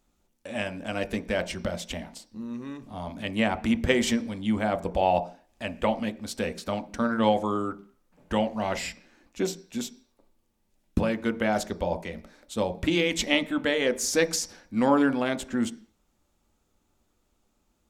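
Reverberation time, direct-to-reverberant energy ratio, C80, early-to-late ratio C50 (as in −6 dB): 0.40 s, 8.5 dB, 21.0 dB, 16.5 dB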